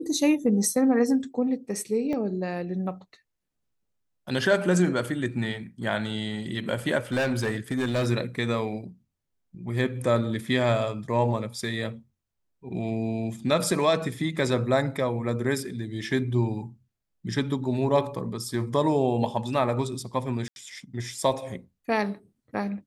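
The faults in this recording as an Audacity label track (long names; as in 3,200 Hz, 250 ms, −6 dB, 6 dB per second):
2.130000	2.130000	drop-out 2.6 ms
7.120000	8.070000	clipping −21.5 dBFS
20.480000	20.560000	drop-out 81 ms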